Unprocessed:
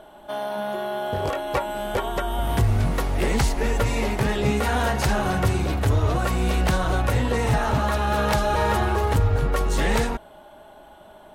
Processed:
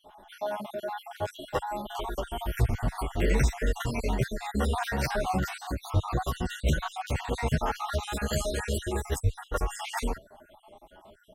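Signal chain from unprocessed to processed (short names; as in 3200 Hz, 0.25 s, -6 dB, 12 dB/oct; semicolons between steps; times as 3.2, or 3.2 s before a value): random spectral dropouts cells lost 58%; 7.99–9.36 graphic EQ 125/1000/8000 Hz -4/-11/+11 dB; endless flanger 9.4 ms +2.5 Hz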